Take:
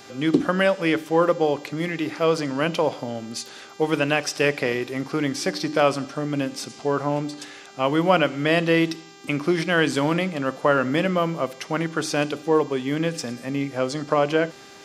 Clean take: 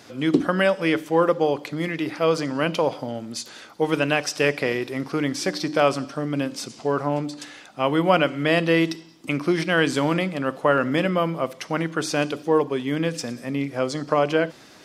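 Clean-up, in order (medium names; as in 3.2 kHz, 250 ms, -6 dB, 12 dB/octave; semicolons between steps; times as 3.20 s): de-hum 396.6 Hz, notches 19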